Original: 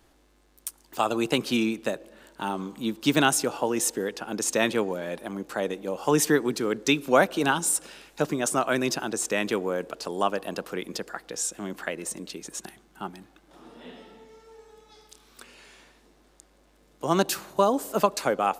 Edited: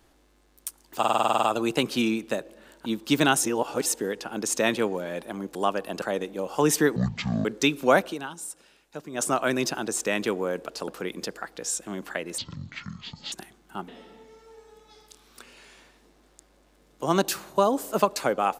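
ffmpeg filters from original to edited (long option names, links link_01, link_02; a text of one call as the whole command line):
ffmpeg -i in.wav -filter_complex "[0:a]asplit=23[link_01][link_02][link_03][link_04][link_05][link_06][link_07][link_08][link_09][link_10][link_11][link_12][link_13][link_14][link_15][link_16][link_17][link_18][link_19][link_20][link_21][link_22][link_23];[link_01]atrim=end=1.032[link_24];[link_02]atrim=start=0.978:end=1.032[link_25];[link_03]atrim=start=0.978:end=1.032[link_26];[link_04]atrim=start=0.978:end=1.032[link_27];[link_05]atrim=start=0.978:end=1.032[link_28];[link_06]atrim=start=0.978:end=1.032[link_29];[link_07]atrim=start=0.978:end=1.032[link_30];[link_08]atrim=start=0.978:end=1.032[link_31];[link_09]atrim=start=0.978:end=1.032[link_32];[link_10]atrim=start=0.978:end=2.412[link_33];[link_11]atrim=start=2.818:end=3.392[link_34];[link_12]atrim=start=3.388:end=3.822,asetpts=PTS-STARTPTS,areverse[link_35];[link_13]atrim=start=3.818:end=5.512[link_36];[link_14]atrim=start=10.128:end=10.602[link_37];[link_15]atrim=start=5.508:end=6.454[link_38];[link_16]atrim=start=6.45:end=6.7,asetpts=PTS-STARTPTS,asetrate=22491,aresample=44100[link_39];[link_17]atrim=start=6.696:end=7.43,asetpts=PTS-STARTPTS,afade=type=out:start_time=0.604:duration=0.13:silence=0.237137[link_40];[link_18]atrim=start=7.43:end=8.35,asetpts=PTS-STARTPTS,volume=-12.5dB[link_41];[link_19]atrim=start=8.35:end=10.132,asetpts=PTS-STARTPTS,afade=type=in:duration=0.13:silence=0.237137[link_42];[link_20]atrim=start=10.598:end=12.104[link_43];[link_21]atrim=start=12.1:end=12.58,asetpts=PTS-STARTPTS,asetrate=22491,aresample=44100[link_44];[link_22]atrim=start=12.576:end=13.142[link_45];[link_23]atrim=start=13.888[link_46];[link_24][link_25]acrossfade=duration=0.004:curve1=hsin:curve2=hsin[link_47];[link_47][link_26]acrossfade=duration=0.004:curve1=hsin:curve2=hsin[link_48];[link_48][link_27]acrossfade=duration=0.004:curve1=hsin:curve2=hsin[link_49];[link_49][link_28]acrossfade=duration=0.004:curve1=hsin:curve2=hsin[link_50];[link_50][link_29]acrossfade=duration=0.004:curve1=hsin:curve2=hsin[link_51];[link_51][link_30]acrossfade=duration=0.004:curve1=hsin:curve2=hsin[link_52];[link_52][link_31]acrossfade=duration=0.004:curve1=hsin:curve2=hsin[link_53];[link_53][link_32]acrossfade=duration=0.004:curve1=hsin:curve2=hsin[link_54];[link_54][link_33]acrossfade=duration=0.004:curve1=hsin:curve2=hsin[link_55];[link_55][link_34]acrossfade=duration=0.004:curve1=hsin:curve2=hsin[link_56];[link_56][link_35]acrossfade=duration=0.004:curve1=hsin:curve2=hsin[link_57];[link_57][link_36]acrossfade=duration=0.004:curve1=hsin:curve2=hsin[link_58];[link_58][link_37]acrossfade=duration=0.004:curve1=hsin:curve2=hsin[link_59];[link_59][link_38]acrossfade=duration=0.004:curve1=hsin:curve2=hsin[link_60];[link_60][link_39]acrossfade=duration=0.004:curve1=hsin:curve2=hsin[link_61];[link_40][link_41][link_42]concat=n=3:v=0:a=1[link_62];[link_61][link_62]acrossfade=duration=0.004:curve1=hsin:curve2=hsin[link_63];[link_63][link_43]acrossfade=duration=0.004:curve1=hsin:curve2=hsin[link_64];[link_64][link_44]acrossfade=duration=0.004:curve1=hsin:curve2=hsin[link_65];[link_65][link_45]acrossfade=duration=0.004:curve1=hsin:curve2=hsin[link_66];[link_66][link_46]acrossfade=duration=0.004:curve1=hsin:curve2=hsin" out.wav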